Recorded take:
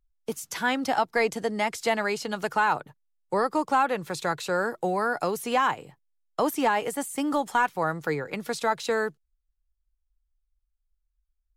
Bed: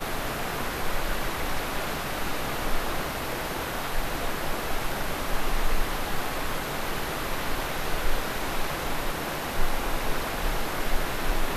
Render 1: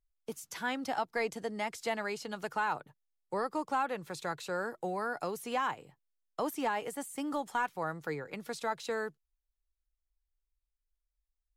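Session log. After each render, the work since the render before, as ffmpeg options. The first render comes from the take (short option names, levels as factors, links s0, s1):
-af "volume=0.355"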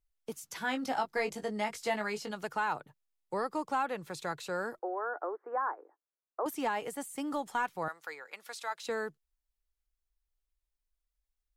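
-filter_complex "[0:a]asettb=1/sr,asplit=3[s0][s1][s2];[s0]atrim=end=0.594[s3];[s1]atrim=start=0.59:end=2.31,asetpts=PTS-STARTPTS,afade=t=in:d=0.004:c=qsin,afade=t=out:st=1.716:d=0.004:c=qsin,asplit=2[s4][s5];[s5]adelay=19,volume=0.531[s6];[s4][s6]amix=inputs=2:normalize=0,atrim=end_sample=75852[s7];[s2]atrim=start=2.306[s8];[s3][s7]acrossfade=d=0.004:c1=hsin:c2=qsin[s9];[s9][s8]acrossfade=d=0.004:c1=qsin:c2=hsin,asettb=1/sr,asplit=3[s10][s11][s12];[s10]atrim=end=4.794[s13];[s11]atrim=start=4.79:end=6.46,asetpts=PTS-STARTPTS,afade=t=in:d=0.004:c=qsin,afade=t=out:st=1.666:d=0.004:c=qsin,asuperpass=centerf=720:order=12:qfactor=0.55[s14];[s12]atrim=start=6.456[s15];[s13][s14]acrossfade=d=0.004:c1=hsin:c2=qsin[s16];[s16][s15]acrossfade=d=0.004:c1=qsin:c2=hsin,asettb=1/sr,asplit=3[s17][s18][s19];[s17]atrim=end=7.884[s20];[s18]atrim=start=7.88:end=8.81,asetpts=PTS-STARTPTS,afade=t=in:d=0.004:c=qsin,afade=t=out:st=0.926:d=0.004:c=qsin,highpass=860[s21];[s19]atrim=start=8.806[s22];[s20][s21]acrossfade=d=0.004:c1=hsin:c2=qsin[s23];[s23][s22]acrossfade=d=0.004:c1=qsin:c2=hsin"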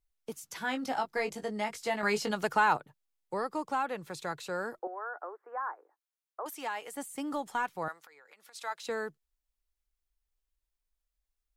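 -filter_complex "[0:a]asettb=1/sr,asplit=3[s0][s1][s2];[s0]atrim=end=4.874[s3];[s1]atrim=start=4.87:end=6.94,asetpts=PTS-STARTPTS,afade=t=in:d=0.004:c=qsin,afade=t=out:st=2.066:d=0.004:c=qsin,highpass=f=990:p=1[s4];[s2]atrim=start=6.936[s5];[s3][s4]acrossfade=d=0.004:c1=hsin:c2=qsin[s6];[s6][s5]acrossfade=d=0.004:c1=qsin:c2=hsin,asplit=3[s7][s8][s9];[s7]afade=t=out:st=8.05:d=0.02[s10];[s8]acompressor=threshold=0.00224:ratio=16:attack=3.2:release=140:knee=1:detection=peak,afade=t=in:st=8.05:d=0.02,afade=t=out:st=8.54:d=0.02[s11];[s9]afade=t=in:st=8.54:d=0.02[s12];[s10][s11][s12]amix=inputs=3:normalize=0,asplit=3[s13][s14][s15];[s13]atrim=end=2.032[s16];[s14]atrim=start=2.028:end=2.772,asetpts=PTS-STARTPTS,volume=2.24[s17];[s15]atrim=start=2.768[s18];[s16][s17]acrossfade=d=0.004:c1=hsin:c2=hsin[s19];[s19][s18]acrossfade=d=0.004:c1=hsin:c2=hsin"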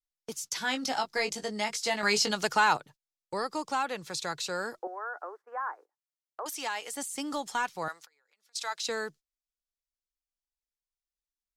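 -af "agate=range=0.126:threshold=0.00282:ratio=16:detection=peak,equalizer=f=5400:w=0.67:g=13.5"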